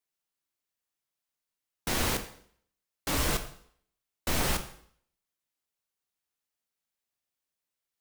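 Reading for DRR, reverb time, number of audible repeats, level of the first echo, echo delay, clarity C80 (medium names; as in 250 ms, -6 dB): 7.0 dB, 0.60 s, no echo, no echo, no echo, 14.0 dB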